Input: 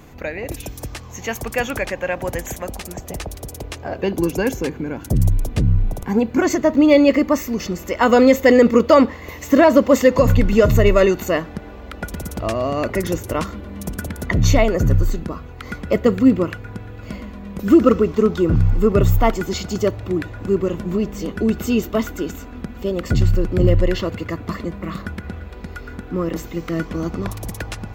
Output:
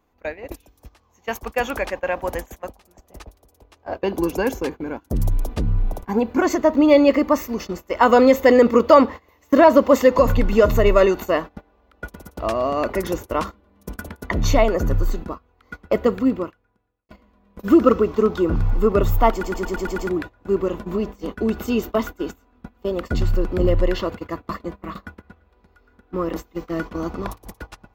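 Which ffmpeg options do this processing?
-filter_complex "[0:a]asplit=9[a][b][c][d][e][f][g][h][i];[a]atrim=end=17.09,asetpts=PTS-STARTPTS,afade=t=out:st=15.91:d=1.18[j];[b]atrim=start=17.09:end=19.432,asetpts=PTS-STARTPTS,afade=t=in:d=0.004:c=hsin[k];[c]atrim=start=19.318:end=19.432[l];[d]atrim=start=19.318:end=19.432[m];[e]atrim=start=19.318:end=19.432[n];[f]atrim=start=19.318:end=19.432[o];[g]atrim=start=19.318:end=19.432[p];[h]atrim=start=19.318:end=19.432[q];[i]atrim=start=20.088[r];[j][k]concat=n=2:v=0:a=1[s];[s][l]acrossfade=d=0.004:c1=hsin:c2=hsin[t];[t][m]acrossfade=d=0.004:c1=hsin:c2=hsin[u];[u][n]acrossfade=d=0.004:c1=hsin:c2=hsin[v];[v][o]acrossfade=d=0.004:c1=hsin:c2=hsin[w];[w][p]acrossfade=d=0.004:c1=hsin:c2=hsin[x];[x][q]acrossfade=d=0.004:c1=hsin:c2=hsin[y];[y][r]acrossfade=d=0.004:c1=hsin:c2=hsin,agate=range=-21dB:threshold=-26dB:ratio=16:detection=peak,equalizer=f=125:t=o:w=1:g=-11,equalizer=f=1k:t=o:w=1:g=5,equalizer=f=2k:t=o:w=1:g=-3,equalizer=f=8k:t=o:w=1:g=-5,volume=-1dB"

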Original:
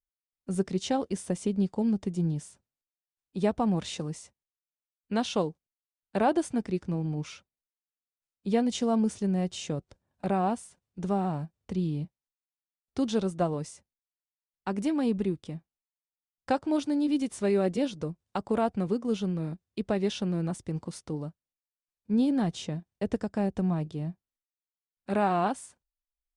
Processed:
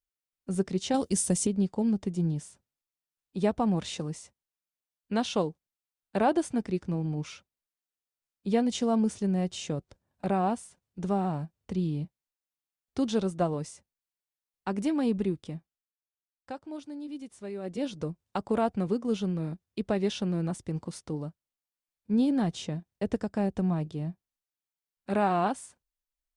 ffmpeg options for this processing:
-filter_complex "[0:a]asettb=1/sr,asplit=3[a][b][c];[a]atrim=end=0.944[d];[b]atrim=start=0.94:end=1.47,asetpts=PTS-STARTPTS,afade=t=in:d=0.004:c=qsin,afade=t=out:st=0.526:d=0.004:c=qsin,bass=f=250:g=6,treble=f=4k:g=15[e];[c]atrim=start=1.466[f];[d][e]acrossfade=d=0.004:c1=hsin:c2=qsin[g];[g][f]acrossfade=d=0.004:c1=qsin:c2=hsin,asplit=3[h][i][j];[h]atrim=end=15.94,asetpts=PTS-STARTPTS,afade=t=out:st=15.56:d=0.38:silence=0.237137[k];[i]atrim=start=15.94:end=17.61,asetpts=PTS-STARTPTS,volume=-12.5dB[l];[j]atrim=start=17.61,asetpts=PTS-STARTPTS,afade=t=in:d=0.38:silence=0.237137[m];[k][l][m]concat=n=3:v=0:a=1"

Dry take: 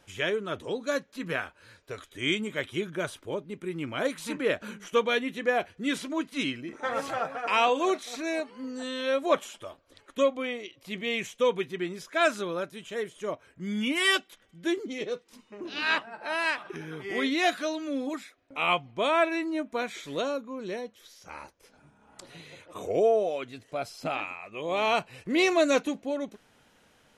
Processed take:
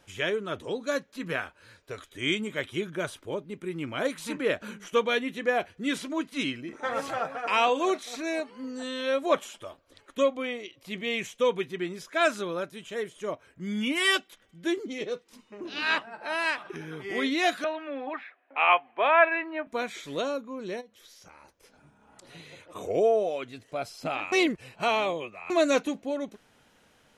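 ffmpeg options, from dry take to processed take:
-filter_complex "[0:a]asettb=1/sr,asplit=3[a][b][c];[a]atrim=end=17.644[d];[b]atrim=start=17.64:end=19.67,asetpts=PTS-STARTPTS,afade=t=in:d=0.004:c=qsin,afade=t=out:st=2.026:d=0.004:c=qsin,highpass=f=320:w=0.5412,highpass=f=320:w=1.3066,equalizer=f=330:t=q:w=4:g=-5,equalizer=f=470:t=q:w=4:g=-3,equalizer=f=790:t=q:w=4:g=9,equalizer=f=1.1k:t=q:w=4:g=4,equalizer=f=1.7k:t=q:w=4:g=9,equalizer=f=2.6k:t=q:w=4:g=5,lowpass=f=2.9k:w=0.5412,lowpass=f=2.9k:w=1.3066[e];[c]atrim=start=19.666[f];[d][e]acrossfade=d=0.004:c1=hsin:c2=qsin[g];[g][f]acrossfade=d=0.004:c1=qsin:c2=hsin,asplit=3[h][i][j];[h]afade=t=out:st=20.8:d=0.02[k];[i]acompressor=threshold=-47dB:ratio=12:attack=3.2:release=140:knee=1:detection=peak,afade=t=in:st=20.8:d=0.02,afade=t=out:st=22.27:d=0.02[l];[j]afade=t=in:st=22.27:d=0.02[m];[k][l][m]amix=inputs=3:normalize=0,asplit=3[n][o][p];[n]atrim=end=24.322[q];[o]atrim=start=24.318:end=25.502,asetpts=PTS-STARTPTS,areverse[r];[p]atrim=start=25.498[s];[q][r]acrossfade=d=0.004:c1=hsin:c2=hsin[t];[t][s]acrossfade=d=0.004:c1=hsin:c2=hsin"

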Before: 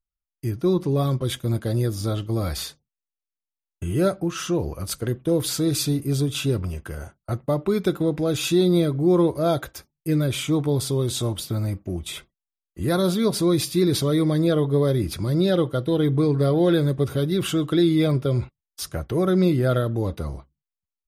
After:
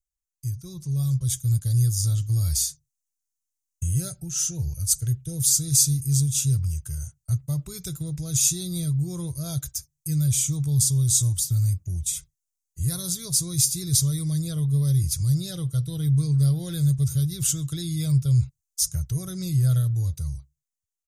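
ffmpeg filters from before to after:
-filter_complex "[0:a]asettb=1/sr,asplit=3[a][b][c];[a]atrim=end=3.904[d];[b]atrim=start=3.9:end=5.88,asetpts=PTS-STARTPTS,afade=t=in:d=0.004:c=qsin,afade=t=out:st=1.976:d=0.004:c=qsin,asuperstop=centerf=1100:order=8:qfactor=4[e];[c]atrim=start=5.876[f];[d][e]acrossfade=d=0.004:c1=hsin:c2=qsin[g];[g][f]acrossfade=d=0.004:c1=qsin:c2=hsin,firequalizer=gain_entry='entry(140,0);entry(210,-26);entry(570,-27);entry(1700,-20);entry(3200,-14);entry(6400,10);entry(12000,3)':delay=0.05:min_phase=1,dynaudnorm=f=280:g=9:m=6dB,volume=-1.5dB"

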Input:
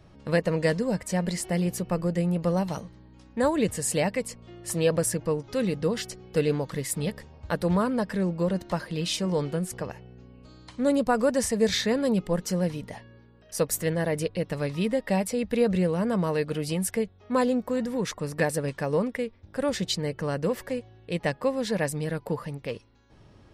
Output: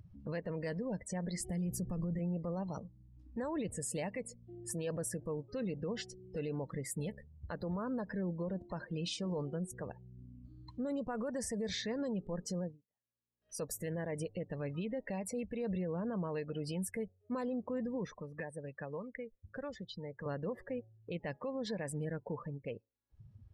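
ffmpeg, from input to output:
-filter_complex "[0:a]asettb=1/sr,asplit=3[a][b][c];[a]atrim=end=1.404[d];[b]atrim=start=1.4:end=2.19,asetpts=PTS-STARTPTS,afade=t=in:d=0.004:c=qsin,afade=t=out:st=0.786:d=0.004:c=qsin,bass=f=250:g=11,treble=f=4k:g=5[e];[c]atrim=start=2.186[f];[d][e]acrossfade=d=0.004:c1=hsin:c2=qsin[g];[g][f]acrossfade=d=0.004:c1=qsin:c2=hsin,asettb=1/sr,asplit=3[h][i][j];[h]atrim=end=18.064[k];[i]atrim=start=18.06:end=20.26,asetpts=PTS-STARTPTS,afade=t=in:d=0.004:c=qsin,afade=t=out:st=2.196:d=0.004:c=qsin,acrossover=split=91|660|1700[l][m][n][o];[l]acompressor=threshold=-53dB:ratio=3[p];[m]acompressor=threshold=-40dB:ratio=3[q];[n]acompressor=threshold=-41dB:ratio=3[r];[o]acompressor=threshold=-43dB:ratio=3[s];[p][q][r][s]amix=inputs=4:normalize=0[t];[j]atrim=start=20.256[u];[k][t]acrossfade=d=0.004:c1=hsin:c2=qsin[v];[v][u]acrossfade=d=0.004:c1=qsin:c2=hsin,asplit=3[w][x][y];[w]atrim=end=12.77,asetpts=PTS-STARTPTS,afade=t=out:st=12.57:d=0.2:silence=0.0944061[z];[x]atrim=start=12.77:end=13.4,asetpts=PTS-STARTPTS,volume=-20.5dB[aa];[y]atrim=start=13.4,asetpts=PTS-STARTPTS,afade=t=in:d=0.2:silence=0.0944061[ab];[z][aa][ab]concat=n=3:v=0:a=1,afftdn=nr=34:nf=-37,acompressor=mode=upward:threshold=-35dB:ratio=2.5,alimiter=limit=-23dB:level=0:latency=1:release=64,volume=-7dB"

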